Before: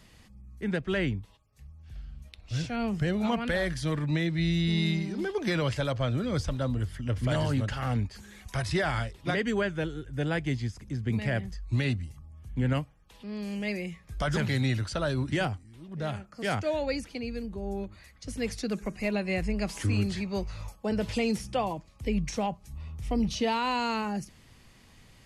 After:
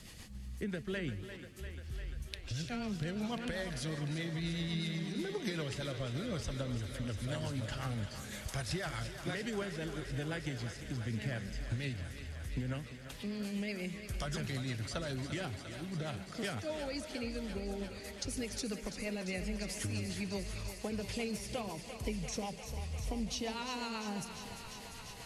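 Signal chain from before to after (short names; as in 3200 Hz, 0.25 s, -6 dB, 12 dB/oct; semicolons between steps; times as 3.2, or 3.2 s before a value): high shelf 4200 Hz +9 dB; compressor 4:1, threshold -41 dBFS, peak gain reduction 15 dB; rotary speaker horn 8 Hz; on a send: thinning echo 0.347 s, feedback 85%, high-pass 270 Hz, level -10 dB; on the sum: warbling echo 0.145 s, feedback 63%, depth 190 cents, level -15.5 dB; gain +4.5 dB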